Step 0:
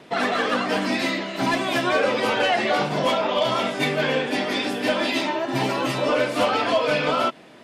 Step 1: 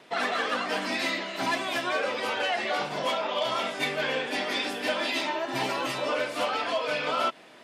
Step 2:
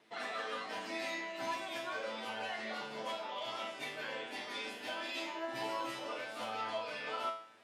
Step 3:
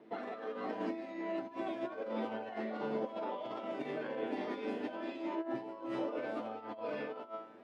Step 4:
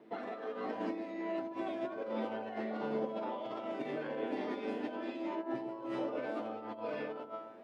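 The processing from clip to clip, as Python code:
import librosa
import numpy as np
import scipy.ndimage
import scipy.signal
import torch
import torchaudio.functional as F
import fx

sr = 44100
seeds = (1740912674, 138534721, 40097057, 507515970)

y1 = fx.rider(x, sr, range_db=10, speed_s=0.5)
y1 = fx.low_shelf(y1, sr, hz=350.0, db=-11.5)
y1 = F.gain(torch.from_numpy(y1), -4.0).numpy()
y2 = fx.comb_fb(y1, sr, f0_hz=110.0, decay_s=0.51, harmonics='all', damping=0.0, mix_pct=90)
y2 = F.gain(torch.from_numpy(y2), -1.0).numpy()
y3 = fx.over_compress(y2, sr, threshold_db=-43.0, ratio=-0.5)
y3 = fx.bandpass_q(y3, sr, hz=300.0, q=1.2)
y3 = F.gain(torch.from_numpy(y3), 12.0).numpy()
y4 = fx.echo_wet_lowpass(y3, sr, ms=127, feedback_pct=50, hz=820.0, wet_db=-10.0)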